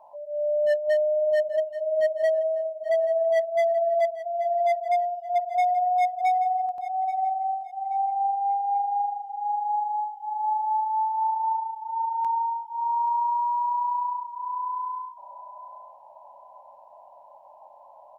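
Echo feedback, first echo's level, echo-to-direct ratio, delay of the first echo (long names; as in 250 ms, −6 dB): 30%, −14.0 dB, −13.5 dB, 830 ms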